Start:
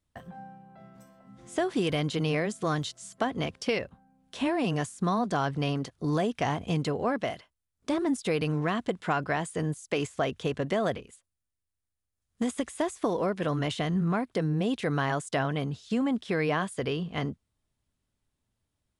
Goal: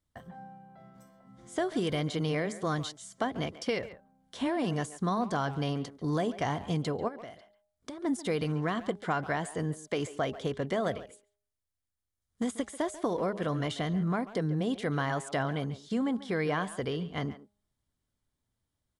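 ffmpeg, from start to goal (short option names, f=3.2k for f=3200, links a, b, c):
-filter_complex "[0:a]bandreject=f=2.6k:w=6.9,bandreject=f=205.2:t=h:w=4,bandreject=f=410.4:t=h:w=4,bandreject=f=615.6:t=h:w=4,bandreject=f=820.8:t=h:w=4,asplit=3[a][b][c];[a]afade=t=out:st=7.07:d=0.02[d];[b]acompressor=threshold=-38dB:ratio=8,afade=t=in:st=7.07:d=0.02,afade=t=out:st=8.03:d=0.02[e];[c]afade=t=in:st=8.03:d=0.02[f];[d][e][f]amix=inputs=3:normalize=0,asplit=2[g][h];[h]adelay=140,highpass=300,lowpass=3.4k,asoftclip=type=hard:threshold=-22dB,volume=-14dB[i];[g][i]amix=inputs=2:normalize=0,volume=-2.5dB"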